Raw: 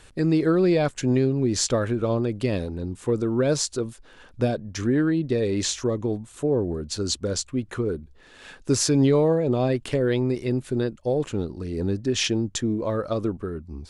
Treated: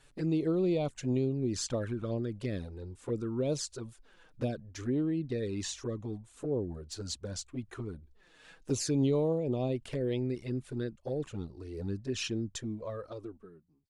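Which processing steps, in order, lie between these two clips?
ending faded out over 1.35 s; envelope flanger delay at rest 7.7 ms, full sweep at -17.5 dBFS; gain -8.5 dB

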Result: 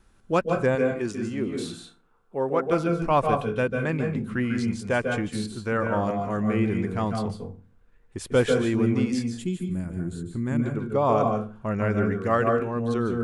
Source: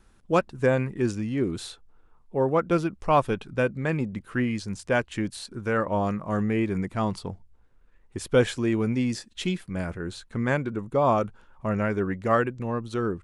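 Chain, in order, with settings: 0.75–2.72 low shelf 180 Hz -11 dB; 9.24–10.59 spectral gain 400–6600 Hz -11 dB; on a send: reverb RT60 0.35 s, pre-delay 0.144 s, DRR 4 dB; on the sum: gain -1 dB

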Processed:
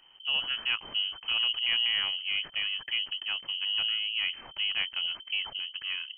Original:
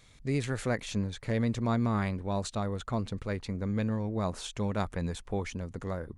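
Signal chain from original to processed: sample sorter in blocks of 8 samples; inverted band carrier 3100 Hz

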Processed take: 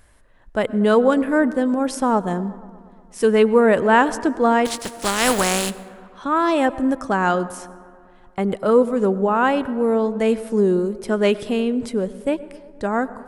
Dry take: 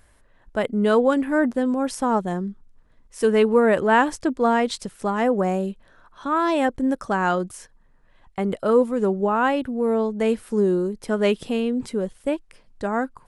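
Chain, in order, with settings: 4.65–5.69 spectral contrast lowered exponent 0.37; dark delay 0.119 s, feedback 72%, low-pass 1600 Hz, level -20 dB; plate-style reverb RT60 1.3 s, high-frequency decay 0.45×, pre-delay 85 ms, DRR 19 dB; gain +2.5 dB

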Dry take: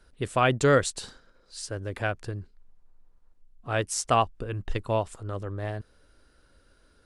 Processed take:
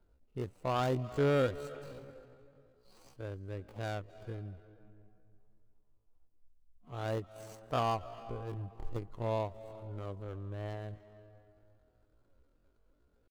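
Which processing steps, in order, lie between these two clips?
median filter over 25 samples; digital reverb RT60 1.3 s, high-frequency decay 0.6×, pre-delay 0.105 s, DRR 14.5 dB; tempo 0.53×; gain -8 dB

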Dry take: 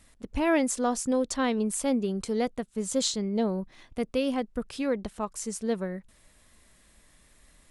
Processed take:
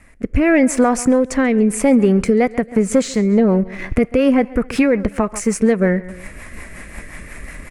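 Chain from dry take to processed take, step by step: sample leveller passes 1; AGC gain up to 14 dB; feedback echo 0.137 s, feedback 35%, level -23 dB; compressor 4:1, threshold -28 dBFS, peak gain reduction 17 dB; on a send at -24 dB: HPF 520 Hz + reverb RT60 0.75 s, pre-delay 6 ms; on the sum: rotary speaker horn 0.85 Hz, later 5.5 Hz, at 2; resonant high shelf 2800 Hz -7.5 dB, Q 3; maximiser +19 dB; gain -3.5 dB

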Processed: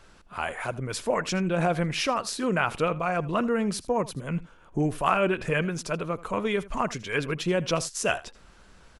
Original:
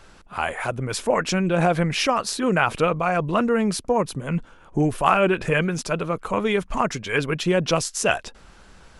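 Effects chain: notch 810 Hz, Q 21; echo 80 ms -19 dB; gain -5 dB

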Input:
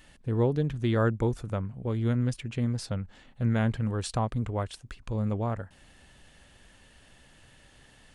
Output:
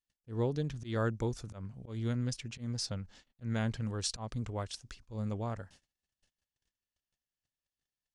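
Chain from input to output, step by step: gate -50 dBFS, range -38 dB; bell 5600 Hz +13.5 dB 1.1 oct; auto swell 0.127 s; gain -7 dB

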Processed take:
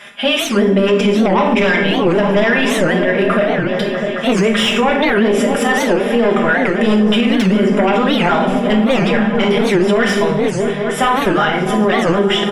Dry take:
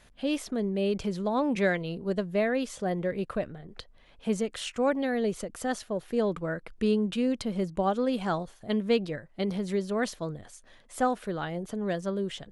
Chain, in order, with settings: HPF 110 Hz; tilt +4 dB/oct; comb 4.9 ms, depth 91%; sine folder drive 11 dB, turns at -10 dBFS; polynomial smoothing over 25 samples; repeats that get brighter 0.216 s, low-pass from 200 Hz, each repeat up 1 oct, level -3 dB; plate-style reverb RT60 0.59 s, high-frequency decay 0.9×, DRR 1 dB; maximiser +9 dB; record warp 78 rpm, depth 250 cents; gain -4.5 dB

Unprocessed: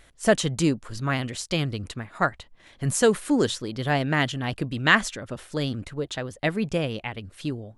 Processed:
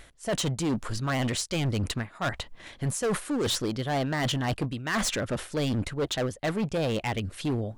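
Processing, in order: dynamic EQ 830 Hz, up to +5 dB, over -34 dBFS, Q 0.75; reverse; compressor 10:1, threshold -29 dBFS, peak gain reduction 19.5 dB; reverse; overloaded stage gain 31 dB; gain +7.5 dB

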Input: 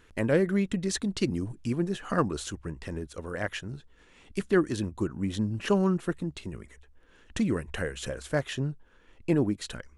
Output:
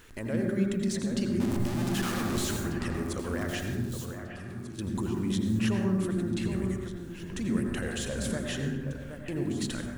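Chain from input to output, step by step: 1.4–2.57 infinite clipping; high shelf 4600 Hz +7.5 dB; compressor, threshold -31 dBFS, peak gain reduction 13 dB; limiter -29.5 dBFS, peak gain reduction 10.5 dB; bit-crush 11-bit; 3.73–4.79 resonator 83 Hz, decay 1.8 s, mix 90%; echo with dull and thin repeats by turns 0.771 s, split 2300 Hz, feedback 51%, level -8 dB; on a send at -2.5 dB: reverb RT60 1.0 s, pre-delay 77 ms; on the sum: slew limiter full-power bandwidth 120 Hz; gain +3.5 dB

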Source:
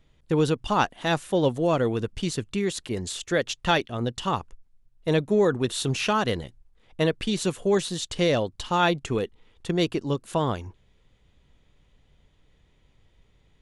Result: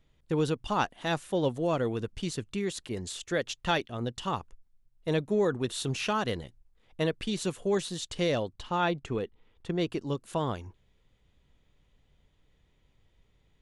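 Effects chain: 8.53–9.9 high shelf 4900 Hz -11 dB; gain -5.5 dB

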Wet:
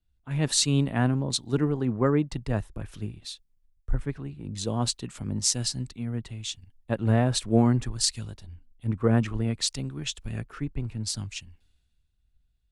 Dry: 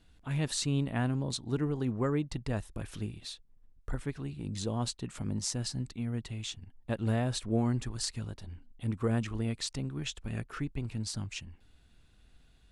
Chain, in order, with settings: three-band expander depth 70%; gain +5 dB

